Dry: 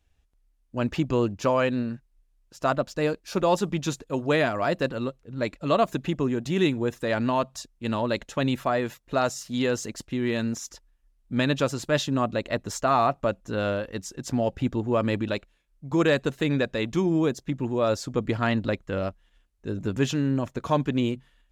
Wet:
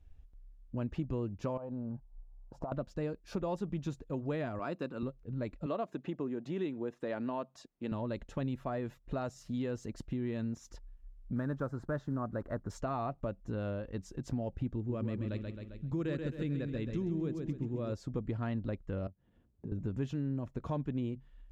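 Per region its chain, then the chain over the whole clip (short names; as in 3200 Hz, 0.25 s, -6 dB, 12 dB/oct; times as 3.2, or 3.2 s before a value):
1.57–2.72 EQ curve 400 Hz 0 dB, 860 Hz +13 dB, 1800 Hz -15 dB + compressor, threshold -30 dBFS
4.59–5.03 HPF 250 Hz + comb 0.8 ms, depth 37%
5.66–7.92 HPF 260 Hz + high shelf 7600 Hz -10 dB
11.36–12.7 block floating point 5-bit + resonant high shelf 2000 Hz -10 dB, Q 3
14.76–17.93 bell 820 Hz -8.5 dB 1.1 oct + feedback echo 0.133 s, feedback 40%, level -6.5 dB
19.07–19.72 tilt shelf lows +9.5 dB, about 910 Hz + compressor 4:1, threshold -42 dBFS + HPF 90 Hz 24 dB/oct
whole clip: tilt -3 dB/oct; compressor 2.5:1, threshold -38 dBFS; gain -2 dB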